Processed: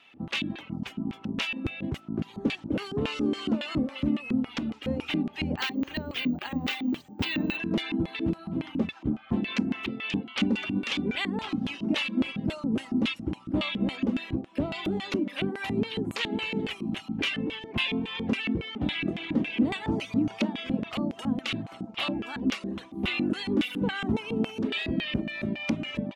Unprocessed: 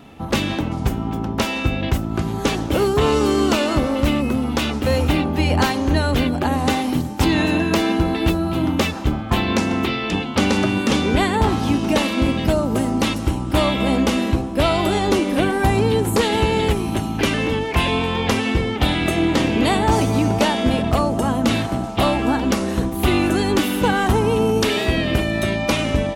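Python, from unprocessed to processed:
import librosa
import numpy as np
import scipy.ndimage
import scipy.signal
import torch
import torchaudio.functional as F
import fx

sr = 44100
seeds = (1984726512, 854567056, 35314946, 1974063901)

y = fx.dereverb_blind(x, sr, rt60_s=0.71)
y = fx.filter_lfo_bandpass(y, sr, shape='square', hz=3.6, low_hz=230.0, high_hz=2700.0, q=2.0)
y = fx.resample_bad(y, sr, factor=2, down='filtered', up='hold', at=(5.57, 7.57))
y = F.gain(torch.from_numpy(y), -1.5).numpy()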